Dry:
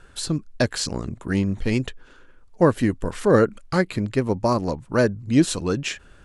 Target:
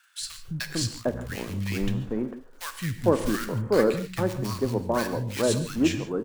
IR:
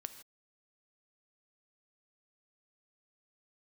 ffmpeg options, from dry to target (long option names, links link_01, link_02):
-filter_complex "[0:a]acrusher=bits=4:mode=log:mix=0:aa=0.000001,acrossover=split=180|1300[link_01][link_02][link_03];[link_01]adelay=210[link_04];[link_02]adelay=450[link_05];[link_04][link_05][link_03]amix=inputs=3:normalize=0[link_06];[1:a]atrim=start_sample=2205[link_07];[link_06][link_07]afir=irnorm=-1:irlink=0"